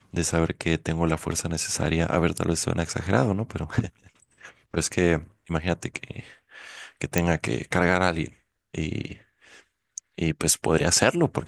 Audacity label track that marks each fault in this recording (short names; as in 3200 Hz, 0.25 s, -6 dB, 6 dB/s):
7.180000	7.180000	pop -6 dBFS